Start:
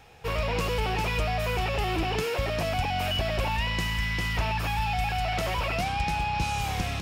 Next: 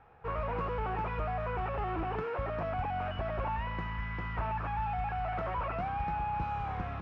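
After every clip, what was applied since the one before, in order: synth low-pass 1300 Hz, resonance Q 2.1; gain -7.5 dB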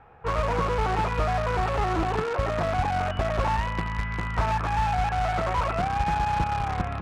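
in parallel at -9 dB: bit-crush 5-bit; on the sum: air absorption 75 m; gain +7 dB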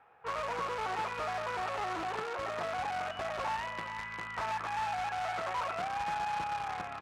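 HPF 810 Hz 6 dB/oct; echo 0.427 s -12.5 dB; gain -5.5 dB

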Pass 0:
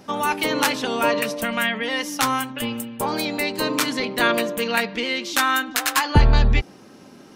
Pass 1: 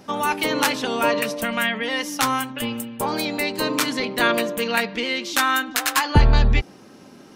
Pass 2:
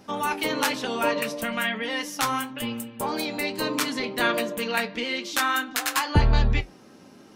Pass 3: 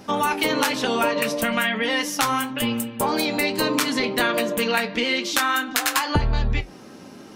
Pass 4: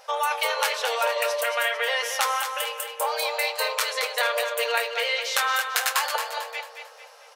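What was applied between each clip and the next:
nothing audible
flange 1.1 Hz, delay 8.8 ms, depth 4.6 ms, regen -57%
compressor 6:1, threshold -25 dBFS, peak gain reduction 11.5 dB; gain +7.5 dB
brick-wall FIR high-pass 450 Hz; on a send: feedback echo 0.223 s, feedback 41%, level -7.5 dB; on the sum: gain -2.5 dB

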